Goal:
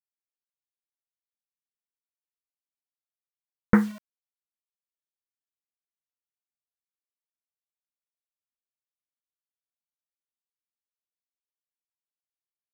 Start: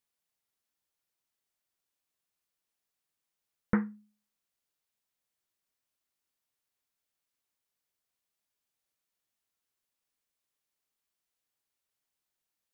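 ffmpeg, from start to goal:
ffmpeg -i in.wav -af "acrusher=bits=8:mix=0:aa=0.000001,volume=9dB" out.wav

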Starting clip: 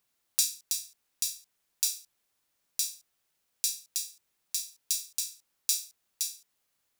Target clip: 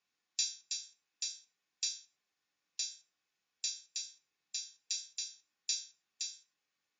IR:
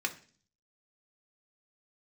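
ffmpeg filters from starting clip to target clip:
-filter_complex "[1:a]atrim=start_sample=2205,atrim=end_sample=6174[link_01];[0:a][link_01]afir=irnorm=-1:irlink=0,volume=-8dB" -ar 16000 -c:a libmp3lame -b:a 56k

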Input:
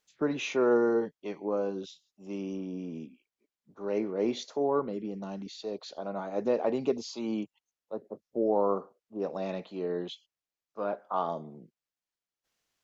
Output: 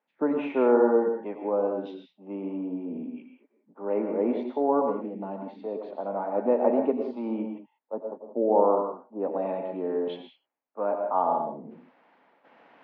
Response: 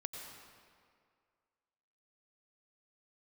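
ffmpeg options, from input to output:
-filter_complex "[0:a]highpass=frequency=180:width=0.5412,highpass=frequency=180:width=1.3066,equalizer=frequency=260:width_type=q:width=4:gain=9,equalizer=frequency=500:width_type=q:width=4:gain=3,equalizer=frequency=880:width_type=q:width=4:gain=10,lowpass=frequency=2300:width=0.5412,lowpass=frequency=2300:width=1.3066,areverse,acompressor=mode=upward:threshold=-35dB:ratio=2.5,areverse,equalizer=frequency=600:width_type=o:width=0.58:gain=4.5[link_01];[1:a]atrim=start_sample=2205,afade=type=out:start_time=0.25:duration=0.01,atrim=end_sample=11466[link_02];[link_01][link_02]afir=irnorm=-1:irlink=0,volume=2dB"

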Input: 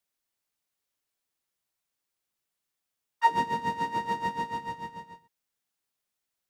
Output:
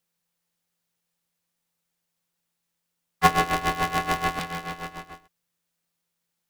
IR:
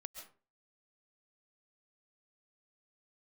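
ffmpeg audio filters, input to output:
-filter_complex "[0:a]aeval=exprs='if(lt(val(0),0),0.447*val(0),val(0))':channel_layout=same,asettb=1/sr,asplit=3[link_01][link_02][link_03];[link_01]atrim=end=4.394[link_04];[link_02]atrim=start=4.39:end=5.1,asetpts=PTS-STARTPTS,afade=type=in:duration=0.004:curve=qsin,afade=type=out:start_time=0.706:duration=0.004:curve=qsin,aeval=exprs='0.106*(cos(1*acos(clip(val(0)/0.106,-1,1)))-cos(1*PI/2))+0.0237*(cos(3*acos(clip(val(0)/0.106,-1,1)))-cos(3*PI/2))+0.0422*(cos(4*acos(clip(val(0)/0.106,-1,1)))-cos(4*PI/2))+0.015*(cos(7*acos(clip(val(0)/0.106,-1,1)))-cos(7*PI/2))':channel_layout=same[link_05];[link_03]atrim=start=5.096[link_06];[link_04][link_05]acrossfade=duration=0.004:curve1=hsin:curve2=qsin[link_07];[link_07][link_06]acrossfade=duration=0.004:curve1=qsin:curve2=hsin,aeval=exprs='val(0)*sgn(sin(2*PI*170*n/s))':channel_layout=same,volume=6.5dB"

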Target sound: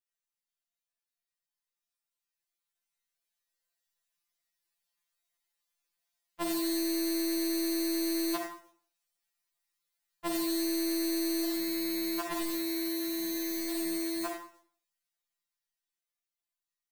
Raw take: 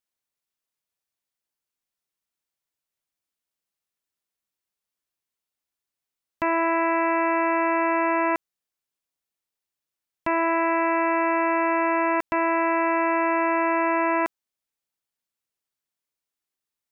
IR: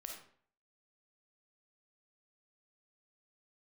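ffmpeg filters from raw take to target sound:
-filter_complex "[0:a]asplit=3[link_01][link_02][link_03];[link_01]afade=type=out:start_time=11.44:duration=0.02[link_04];[link_02]equalizer=frequency=500:width=1.8:gain=-6.5,afade=type=in:start_time=11.44:duration=0.02,afade=type=out:start_time=13.7:duration=0.02[link_05];[link_03]afade=type=in:start_time=13.7:duration=0.02[link_06];[link_04][link_05][link_06]amix=inputs=3:normalize=0,dynaudnorm=framelen=470:gausssize=13:maxgain=10dB,equalizer=frequency=240:width=0.52:gain=-11[link_07];[1:a]atrim=start_sample=2205[link_08];[link_07][link_08]afir=irnorm=-1:irlink=0,acrusher=bits=3:mode=log:mix=0:aa=0.000001,afftfilt=real='re*2.83*eq(mod(b,8),0)':imag='im*2.83*eq(mod(b,8),0)':win_size=2048:overlap=0.75"

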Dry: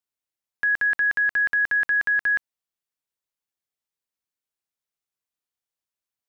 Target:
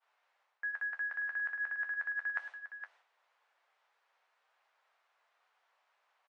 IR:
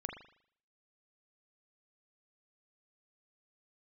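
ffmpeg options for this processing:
-filter_complex "[0:a]aeval=exprs='val(0)+0.5*0.0112*sgn(val(0))':channel_layout=same,highpass=frequency=650:width=0.5412,highpass=frequency=650:width=1.3066,agate=range=-33dB:threshold=-36dB:ratio=3:detection=peak,lowpass=1600,areverse,acompressor=threshold=-34dB:ratio=16,areverse,flanger=delay=8.8:depth=4.5:regen=-45:speed=0.35:shape=triangular,asplit=2[link_01][link_02];[link_02]aecho=0:1:465:0.335[link_03];[link_01][link_03]amix=inputs=2:normalize=0,volume=3.5dB" -ar 22050 -c:a aac -b:a 96k

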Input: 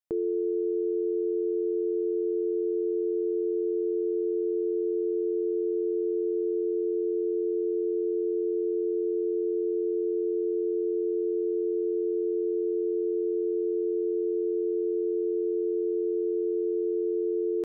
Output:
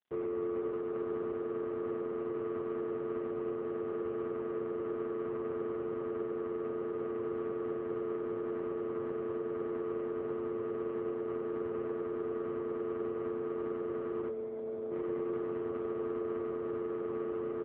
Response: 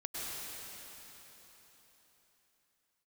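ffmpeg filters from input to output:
-filter_complex "[0:a]asplit=3[link_01][link_02][link_03];[link_01]afade=type=out:start_time=14.28:duration=0.02[link_04];[link_02]equalizer=frequency=250:width_type=o:width=1:gain=-15,afade=type=in:start_time=14.28:duration=0.02,afade=type=out:start_time=14.9:duration=0.02[link_05];[link_03]afade=type=in:start_time=14.9:duration=0.02[link_06];[link_04][link_05][link_06]amix=inputs=3:normalize=0,tremolo=f=210:d=0.621,asoftclip=type=tanh:threshold=-31dB,aecho=1:1:452|904:0.0794|0.0222,asplit=2[link_07][link_08];[1:a]atrim=start_sample=2205,asetrate=38367,aresample=44100[link_09];[link_08][link_09]afir=irnorm=-1:irlink=0,volume=-13dB[link_10];[link_07][link_10]amix=inputs=2:normalize=0" -ar 8000 -c:a libopencore_amrnb -b:a 4750

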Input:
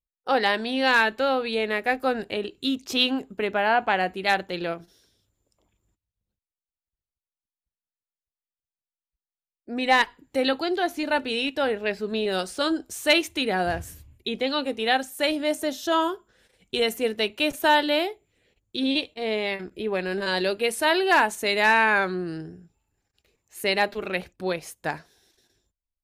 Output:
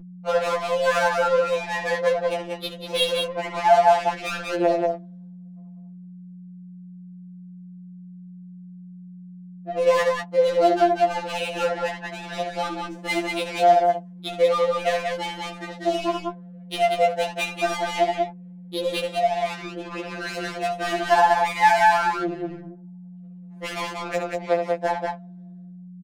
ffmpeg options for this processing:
ffmpeg -i in.wav -filter_complex "[0:a]highpass=370,equalizer=frequency=700:width_type=o:width=0.93:gain=15,acompressor=threshold=-32dB:ratio=2,asplit=2[link_01][link_02];[link_02]aecho=0:1:69.97|189.5:0.501|0.708[link_03];[link_01][link_03]amix=inputs=2:normalize=0,adynamicsmooth=sensitivity=4:basefreq=580,aeval=exprs='val(0)+0.00891*(sin(2*PI*60*n/s)+sin(2*PI*2*60*n/s)/2+sin(2*PI*3*60*n/s)/3+sin(2*PI*4*60*n/s)/4+sin(2*PI*5*60*n/s)/5)':channel_layout=same,afftfilt=real='re*2.83*eq(mod(b,8),0)':imag='im*2.83*eq(mod(b,8),0)':win_size=2048:overlap=0.75,volume=7dB" out.wav

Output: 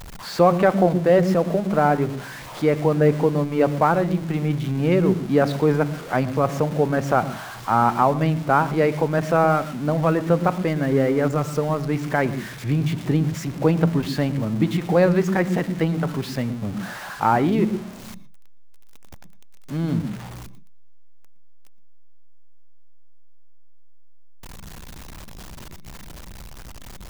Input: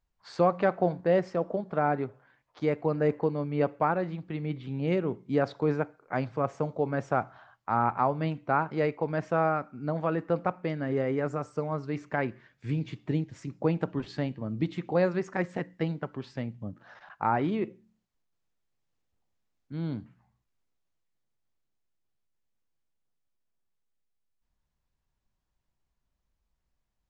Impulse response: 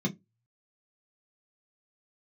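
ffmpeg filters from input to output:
-filter_complex "[0:a]aeval=exprs='val(0)+0.5*0.0112*sgn(val(0))':channel_layout=same,asplit=2[link_01][link_02];[1:a]atrim=start_sample=2205,adelay=113[link_03];[link_02][link_03]afir=irnorm=-1:irlink=0,volume=-23dB[link_04];[link_01][link_04]amix=inputs=2:normalize=0,volume=7.5dB"

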